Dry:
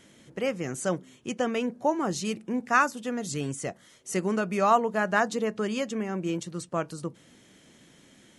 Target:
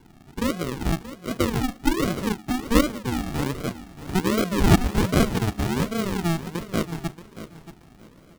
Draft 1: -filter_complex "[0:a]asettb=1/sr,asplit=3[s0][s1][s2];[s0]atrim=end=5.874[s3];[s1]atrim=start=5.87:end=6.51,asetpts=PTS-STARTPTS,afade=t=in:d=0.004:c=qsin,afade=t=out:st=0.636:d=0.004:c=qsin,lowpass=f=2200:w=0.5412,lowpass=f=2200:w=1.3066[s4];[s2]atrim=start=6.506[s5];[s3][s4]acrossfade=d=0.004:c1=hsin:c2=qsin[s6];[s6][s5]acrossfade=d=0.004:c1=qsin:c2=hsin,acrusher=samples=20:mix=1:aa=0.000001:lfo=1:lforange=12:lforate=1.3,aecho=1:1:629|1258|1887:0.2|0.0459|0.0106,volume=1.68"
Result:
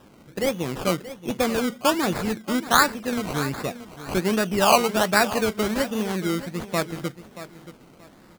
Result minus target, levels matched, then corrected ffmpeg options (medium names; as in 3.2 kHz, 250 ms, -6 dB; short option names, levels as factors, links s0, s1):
decimation with a swept rate: distortion -17 dB
-filter_complex "[0:a]asettb=1/sr,asplit=3[s0][s1][s2];[s0]atrim=end=5.874[s3];[s1]atrim=start=5.87:end=6.51,asetpts=PTS-STARTPTS,afade=t=in:d=0.004:c=qsin,afade=t=out:st=0.636:d=0.004:c=qsin,lowpass=f=2200:w=0.5412,lowpass=f=2200:w=1.3066[s4];[s2]atrim=start=6.506[s5];[s3][s4]acrossfade=d=0.004:c1=hsin:c2=qsin[s6];[s6][s5]acrossfade=d=0.004:c1=qsin:c2=hsin,acrusher=samples=69:mix=1:aa=0.000001:lfo=1:lforange=41.4:lforate=1.3,aecho=1:1:629|1258|1887:0.2|0.0459|0.0106,volume=1.68"